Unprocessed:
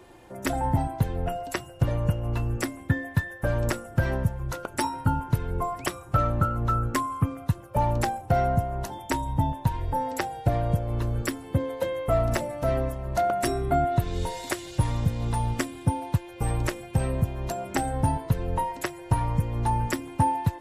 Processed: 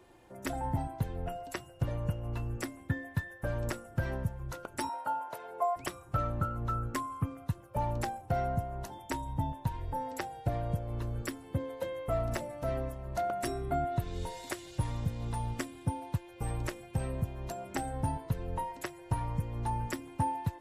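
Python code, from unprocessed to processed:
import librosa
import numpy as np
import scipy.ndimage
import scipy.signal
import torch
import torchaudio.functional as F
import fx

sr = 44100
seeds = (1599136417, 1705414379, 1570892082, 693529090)

y = fx.highpass_res(x, sr, hz=650.0, q=4.0, at=(4.89, 5.76))
y = y * 10.0 ** (-8.5 / 20.0)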